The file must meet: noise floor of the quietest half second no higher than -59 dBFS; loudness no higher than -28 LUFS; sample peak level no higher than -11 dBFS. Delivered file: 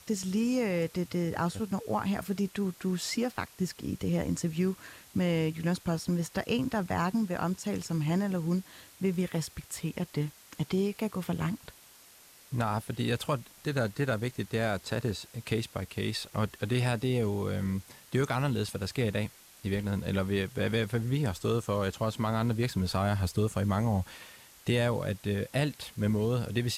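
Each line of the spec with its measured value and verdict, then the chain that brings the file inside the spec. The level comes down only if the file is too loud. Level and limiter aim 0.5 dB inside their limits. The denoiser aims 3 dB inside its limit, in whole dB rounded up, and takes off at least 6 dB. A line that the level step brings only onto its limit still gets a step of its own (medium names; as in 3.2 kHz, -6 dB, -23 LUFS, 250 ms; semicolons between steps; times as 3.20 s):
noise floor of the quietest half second -56 dBFS: fail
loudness -31.5 LUFS: pass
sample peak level -15.5 dBFS: pass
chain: noise reduction 6 dB, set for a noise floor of -56 dBFS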